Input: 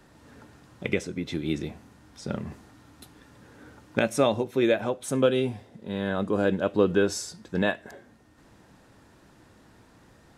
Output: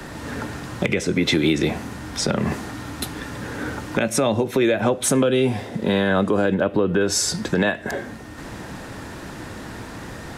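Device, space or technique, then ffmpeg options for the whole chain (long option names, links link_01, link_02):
mastering chain: -filter_complex "[0:a]asettb=1/sr,asplit=3[link_01][link_02][link_03];[link_01]atrim=end=6.544[link_04];[link_02]atrim=start=6.54:end=7.01,asetpts=PTS-STARTPTS,afade=type=in:duration=0.004:curve=qsin,afade=type=out:start_time=0.466:duration=0.004:curve=qsin,equalizer=frequency=6900:width_type=o:width=1.5:gain=-11[link_05];[link_03]atrim=start=7.006[link_06];[link_04][link_05]acrossfade=duration=0.004:curve1=hsin:curve2=qsin[link_07];[link_07][link_06]acrossfade=duration=0.004:curve1=qsin:curve2=hsin,equalizer=frequency=1900:width_type=o:width=0.77:gain=2.5,acrossover=split=120|330[link_08][link_09][link_10];[link_08]acompressor=threshold=-54dB:ratio=4[link_11];[link_09]acompressor=threshold=-42dB:ratio=4[link_12];[link_10]acompressor=threshold=-37dB:ratio=4[link_13];[link_11][link_12][link_13]amix=inputs=3:normalize=0,acompressor=threshold=-34dB:ratio=2,asoftclip=type=tanh:threshold=-19.5dB,asoftclip=type=hard:threshold=-25dB,alimiter=level_in=29dB:limit=-1dB:release=50:level=0:latency=1,volume=-8.5dB"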